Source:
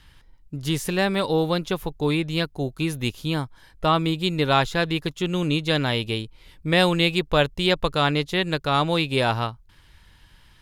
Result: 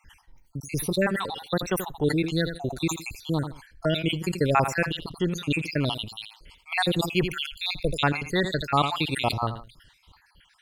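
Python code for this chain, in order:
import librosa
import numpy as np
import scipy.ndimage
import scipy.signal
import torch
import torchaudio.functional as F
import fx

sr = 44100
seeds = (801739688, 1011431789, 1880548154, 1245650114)

y = fx.spec_dropout(x, sr, seeds[0], share_pct=65)
y = fx.lowpass(y, sr, hz=3700.0, slope=6, at=(4.92, 5.32))
y = fx.echo_feedback(y, sr, ms=83, feedback_pct=24, wet_db=-19)
y = fx.sustainer(y, sr, db_per_s=110.0)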